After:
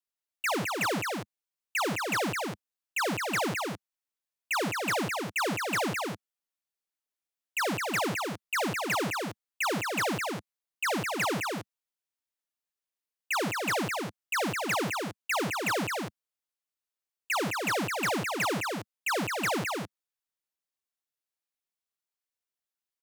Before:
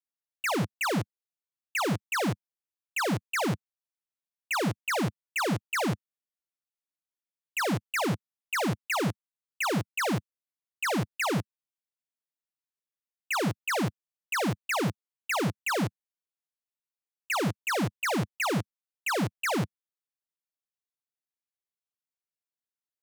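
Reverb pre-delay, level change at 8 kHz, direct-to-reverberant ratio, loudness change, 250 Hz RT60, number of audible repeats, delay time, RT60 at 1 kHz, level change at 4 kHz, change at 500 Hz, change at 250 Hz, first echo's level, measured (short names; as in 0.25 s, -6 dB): none, +1.5 dB, none, -0.5 dB, none, 1, 0.212 s, none, +1.5 dB, 0.0 dB, -3.0 dB, -4.0 dB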